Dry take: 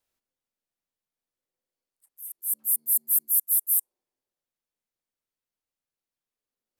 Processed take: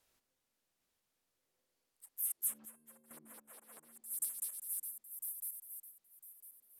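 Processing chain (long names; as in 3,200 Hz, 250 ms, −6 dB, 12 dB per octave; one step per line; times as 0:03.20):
feedback delay that plays each chunk backwards 501 ms, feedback 43%, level −10 dB
treble cut that deepens with the level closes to 1,300 Hz, closed at −20.5 dBFS
0:02.65–0:03.11: tuned comb filter 530 Hz, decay 0.35 s, mix 70%
level +6.5 dB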